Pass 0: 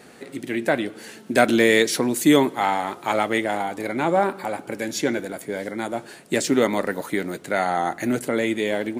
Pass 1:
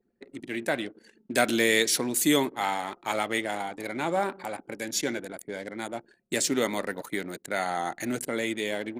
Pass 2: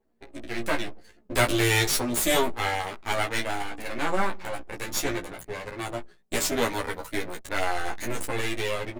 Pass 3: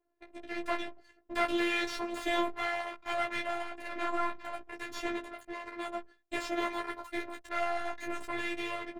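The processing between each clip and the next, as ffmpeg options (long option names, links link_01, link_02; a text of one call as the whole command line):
ffmpeg -i in.wav -af "anlmdn=3.98,highshelf=frequency=2700:gain=10,volume=-8dB" out.wav
ffmpeg -i in.wav -filter_complex "[0:a]aeval=exprs='max(val(0),0)':channel_layout=same,asplit=2[link_01][link_02];[link_02]adelay=17,volume=-6dB[link_03];[link_01][link_03]amix=inputs=2:normalize=0,asplit=2[link_04][link_05];[link_05]adelay=10.5,afreqshift=-0.27[link_06];[link_04][link_06]amix=inputs=2:normalize=1,volume=7dB" out.wav
ffmpeg -i in.wav -filter_complex "[0:a]acrossover=split=4700[link_01][link_02];[link_02]acompressor=threshold=-36dB:ratio=4:attack=1:release=60[link_03];[link_01][link_03]amix=inputs=2:normalize=0,asplit=2[link_04][link_05];[link_05]highpass=frequency=720:poles=1,volume=14dB,asoftclip=type=tanh:threshold=-6dB[link_06];[link_04][link_06]amix=inputs=2:normalize=0,lowpass=frequency=1700:poles=1,volume=-6dB,afftfilt=real='hypot(re,im)*cos(PI*b)':imag='0':win_size=512:overlap=0.75,volume=-6.5dB" out.wav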